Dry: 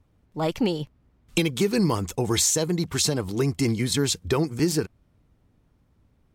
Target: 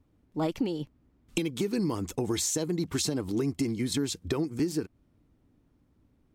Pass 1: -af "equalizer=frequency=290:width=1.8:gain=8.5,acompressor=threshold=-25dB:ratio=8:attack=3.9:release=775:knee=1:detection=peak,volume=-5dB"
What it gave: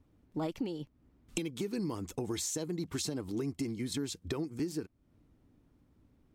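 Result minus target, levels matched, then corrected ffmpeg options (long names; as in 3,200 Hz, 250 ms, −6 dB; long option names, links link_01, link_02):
downward compressor: peak gain reduction +6.5 dB
-af "equalizer=frequency=290:width=1.8:gain=8.5,acompressor=threshold=-17.5dB:ratio=8:attack=3.9:release=775:knee=1:detection=peak,volume=-5dB"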